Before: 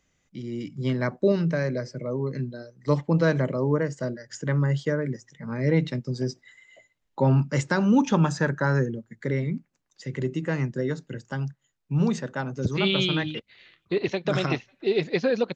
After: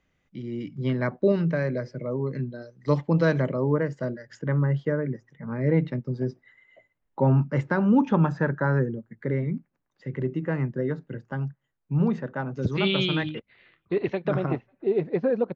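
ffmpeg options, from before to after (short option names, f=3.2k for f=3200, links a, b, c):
-af "asetnsamples=n=441:p=0,asendcmd='2.62 lowpass f 5000;3.49 lowpass f 3000;4.39 lowpass f 1800;12.52 lowpass f 3800;13.29 lowpass f 2000;14.34 lowpass f 1100',lowpass=3.1k"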